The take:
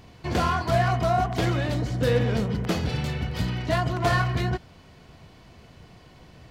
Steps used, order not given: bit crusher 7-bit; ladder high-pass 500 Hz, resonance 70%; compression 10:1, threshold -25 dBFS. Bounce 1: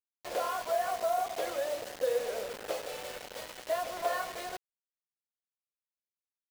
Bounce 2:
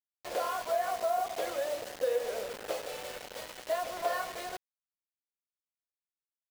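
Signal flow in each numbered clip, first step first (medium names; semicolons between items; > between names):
ladder high-pass > compression > bit crusher; ladder high-pass > bit crusher > compression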